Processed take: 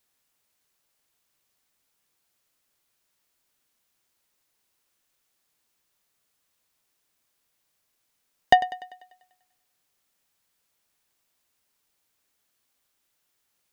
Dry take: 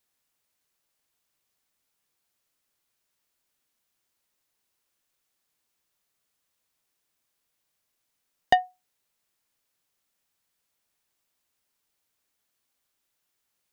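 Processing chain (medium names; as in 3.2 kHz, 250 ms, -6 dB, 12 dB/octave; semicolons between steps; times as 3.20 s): thinning echo 98 ms, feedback 55%, high-pass 180 Hz, level -16 dB; trim +3.5 dB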